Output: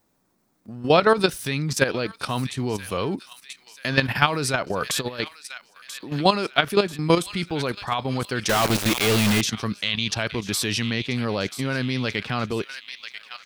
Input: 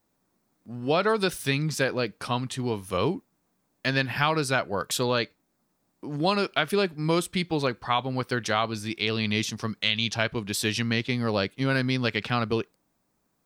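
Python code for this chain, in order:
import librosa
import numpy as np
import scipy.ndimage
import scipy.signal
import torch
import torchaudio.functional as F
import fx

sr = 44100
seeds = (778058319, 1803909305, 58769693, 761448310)

p1 = fx.over_compress(x, sr, threshold_db=-32.0, ratio=-1.0, at=(4.7, 5.2))
p2 = p1 + fx.echo_wet_highpass(p1, sr, ms=987, feedback_pct=52, hz=1900.0, wet_db=-11, dry=0)
p3 = fx.level_steps(p2, sr, step_db=11)
p4 = fx.quant_companded(p3, sr, bits=2, at=(8.49, 9.41))
y = F.gain(torch.from_numpy(p4), 8.0).numpy()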